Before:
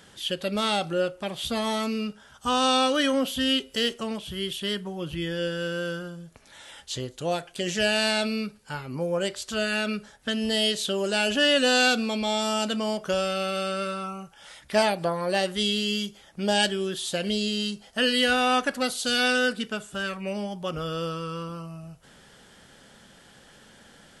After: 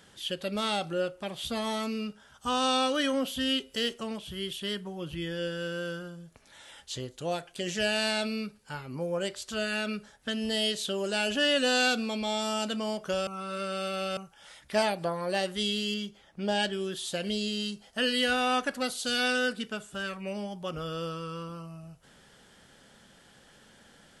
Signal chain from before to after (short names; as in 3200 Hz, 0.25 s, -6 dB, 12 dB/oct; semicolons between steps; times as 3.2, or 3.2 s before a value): 13.27–14.17 reverse; 15.94–16.73 high shelf 6000 Hz -11.5 dB; gain -4.5 dB